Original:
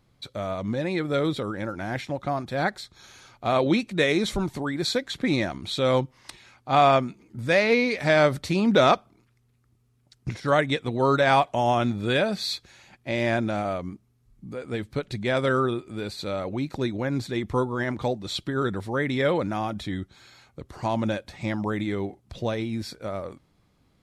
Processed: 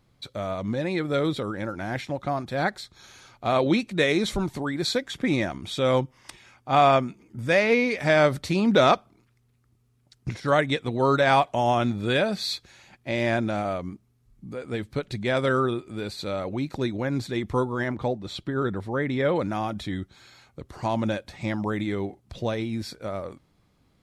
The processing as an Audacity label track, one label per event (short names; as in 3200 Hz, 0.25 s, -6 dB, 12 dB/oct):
5.000000	8.250000	notch 4100 Hz, Q 6.5
17.880000	19.360000	high shelf 2900 Hz -9 dB